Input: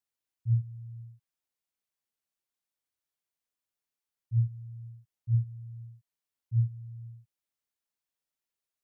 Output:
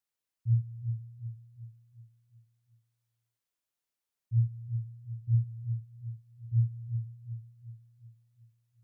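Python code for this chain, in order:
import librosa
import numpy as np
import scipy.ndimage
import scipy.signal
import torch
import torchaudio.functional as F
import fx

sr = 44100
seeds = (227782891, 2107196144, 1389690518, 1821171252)

y = fx.echo_feedback(x, sr, ms=368, feedback_pct=47, wet_db=-7.0)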